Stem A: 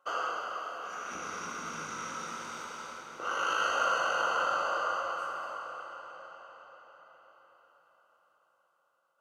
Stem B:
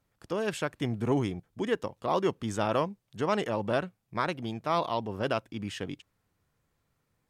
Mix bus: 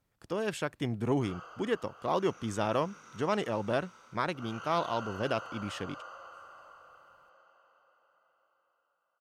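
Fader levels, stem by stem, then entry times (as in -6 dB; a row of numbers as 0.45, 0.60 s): -14.5, -2.0 dB; 1.15, 0.00 s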